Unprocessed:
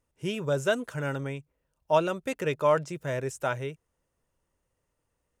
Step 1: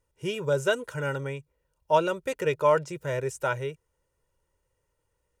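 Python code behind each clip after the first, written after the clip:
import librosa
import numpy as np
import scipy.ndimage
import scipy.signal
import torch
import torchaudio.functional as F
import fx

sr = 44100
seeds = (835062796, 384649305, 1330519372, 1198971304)

y = x + 0.55 * np.pad(x, (int(2.1 * sr / 1000.0), 0))[:len(x)]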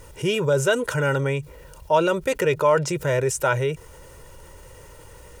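y = fx.env_flatten(x, sr, amount_pct=50)
y = F.gain(torch.from_numpy(y), 2.0).numpy()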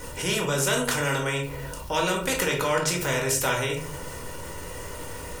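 y = fx.room_shoebox(x, sr, seeds[0], volume_m3=230.0, walls='furnished', distance_m=1.9)
y = fx.spectral_comp(y, sr, ratio=2.0)
y = F.gain(torch.from_numpy(y), -8.5).numpy()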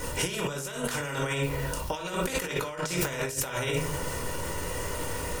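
y = fx.over_compress(x, sr, threshold_db=-29.0, ratio=-0.5)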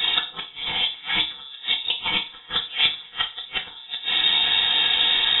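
y = fx.gate_flip(x, sr, shuts_db=-20.0, range_db=-28)
y = fx.rev_fdn(y, sr, rt60_s=0.32, lf_ratio=1.4, hf_ratio=0.95, size_ms=20.0, drr_db=0.5)
y = fx.freq_invert(y, sr, carrier_hz=3700)
y = F.gain(torch.from_numpy(y), 9.0).numpy()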